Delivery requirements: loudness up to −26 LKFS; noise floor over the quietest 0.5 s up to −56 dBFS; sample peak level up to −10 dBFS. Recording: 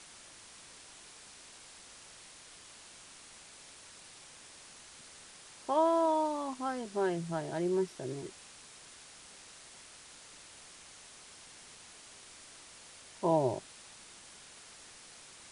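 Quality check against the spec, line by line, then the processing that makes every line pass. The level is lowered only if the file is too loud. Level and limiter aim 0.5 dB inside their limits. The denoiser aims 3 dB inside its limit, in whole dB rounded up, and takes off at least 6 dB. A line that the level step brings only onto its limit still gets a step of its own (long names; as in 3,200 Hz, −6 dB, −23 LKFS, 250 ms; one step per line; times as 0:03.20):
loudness −33.0 LKFS: in spec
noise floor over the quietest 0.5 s −54 dBFS: out of spec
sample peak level −16.0 dBFS: in spec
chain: broadband denoise 6 dB, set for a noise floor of −54 dBFS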